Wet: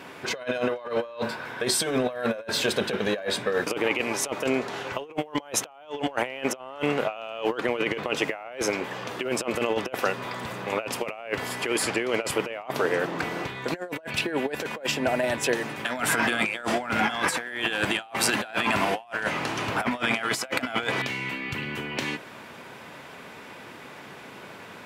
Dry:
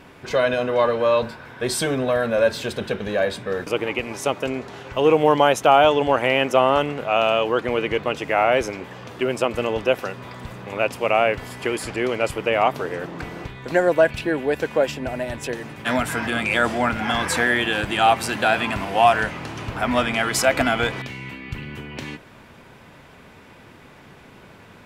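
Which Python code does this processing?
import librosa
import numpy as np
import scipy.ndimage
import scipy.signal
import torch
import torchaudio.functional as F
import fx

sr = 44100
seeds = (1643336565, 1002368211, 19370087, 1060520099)

y = scipy.signal.sosfilt(scipy.signal.butter(2, 99.0, 'highpass', fs=sr, output='sos'), x)
y = fx.low_shelf(y, sr, hz=200.0, db=-11.0)
y = fx.over_compress(y, sr, threshold_db=-27.0, ratio=-0.5)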